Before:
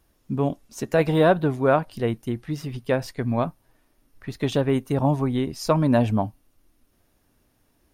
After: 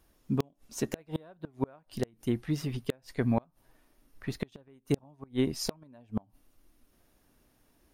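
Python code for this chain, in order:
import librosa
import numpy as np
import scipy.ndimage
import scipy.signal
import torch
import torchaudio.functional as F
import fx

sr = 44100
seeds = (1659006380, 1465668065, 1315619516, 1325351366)

p1 = fx.peak_eq(x, sr, hz=95.0, db=-4.5, octaves=0.67)
p2 = fx.gate_flip(p1, sr, shuts_db=-13.0, range_db=-34)
p3 = (np.mod(10.0 ** (13.0 / 20.0) * p2 + 1.0, 2.0) - 1.0) / 10.0 ** (13.0 / 20.0)
p4 = p2 + F.gain(torch.from_numpy(p3), -6.5).numpy()
y = F.gain(torch.from_numpy(p4), -4.5).numpy()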